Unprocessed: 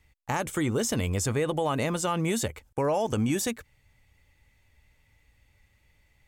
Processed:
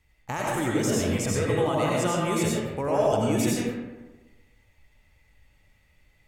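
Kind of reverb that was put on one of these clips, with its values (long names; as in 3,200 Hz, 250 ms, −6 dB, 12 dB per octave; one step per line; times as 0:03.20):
comb and all-pass reverb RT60 1.2 s, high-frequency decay 0.5×, pre-delay 55 ms, DRR −4.5 dB
level −3 dB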